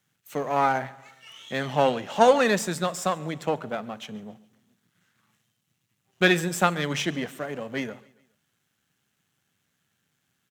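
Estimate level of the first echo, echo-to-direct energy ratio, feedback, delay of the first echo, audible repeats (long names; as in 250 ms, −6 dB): −23.5 dB, −22.5 dB, 48%, 139 ms, 2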